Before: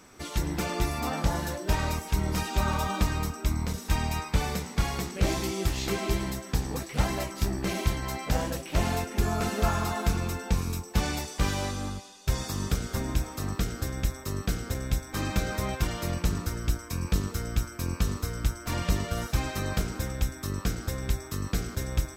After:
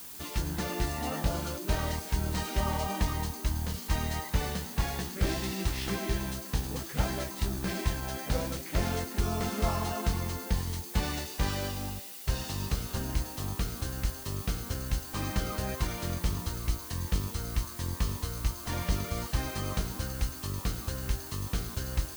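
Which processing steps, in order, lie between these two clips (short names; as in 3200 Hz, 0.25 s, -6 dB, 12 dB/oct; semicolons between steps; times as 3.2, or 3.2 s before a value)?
CVSD 64 kbps; formant shift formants -4 st; added noise blue -42 dBFS; gain -3 dB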